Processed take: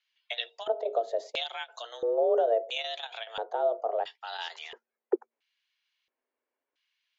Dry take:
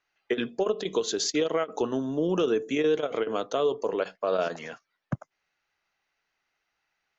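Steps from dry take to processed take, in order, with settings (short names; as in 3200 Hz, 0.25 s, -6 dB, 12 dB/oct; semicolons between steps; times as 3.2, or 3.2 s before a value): frequency shift +230 Hz; LFO band-pass square 0.74 Hz 440–3500 Hz; gain +5.5 dB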